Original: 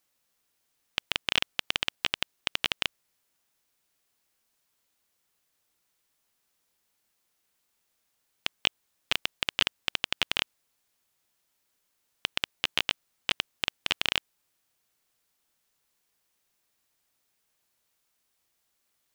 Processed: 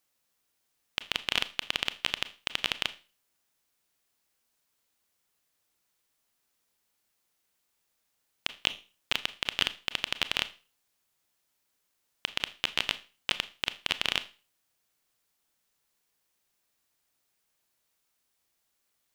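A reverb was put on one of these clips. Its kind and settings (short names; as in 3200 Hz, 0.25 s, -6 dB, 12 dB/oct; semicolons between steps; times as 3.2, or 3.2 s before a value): Schroeder reverb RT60 0.34 s, combs from 26 ms, DRR 13 dB; gain -1.5 dB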